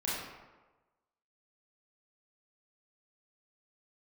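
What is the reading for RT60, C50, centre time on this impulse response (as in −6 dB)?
1.2 s, −1.5 dB, 85 ms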